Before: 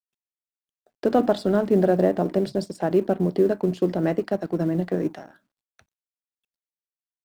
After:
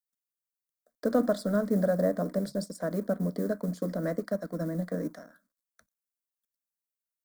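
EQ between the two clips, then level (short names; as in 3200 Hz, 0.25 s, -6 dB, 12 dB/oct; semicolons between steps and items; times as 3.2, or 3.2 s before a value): high shelf 6400 Hz +10 dB; fixed phaser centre 550 Hz, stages 8; -4.0 dB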